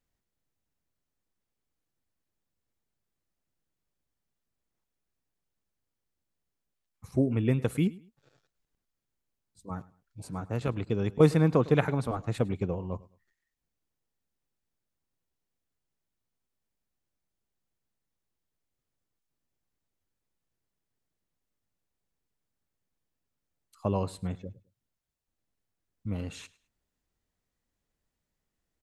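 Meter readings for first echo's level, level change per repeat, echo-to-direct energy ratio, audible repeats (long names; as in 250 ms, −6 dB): −21.0 dB, −11.5 dB, −20.5 dB, 2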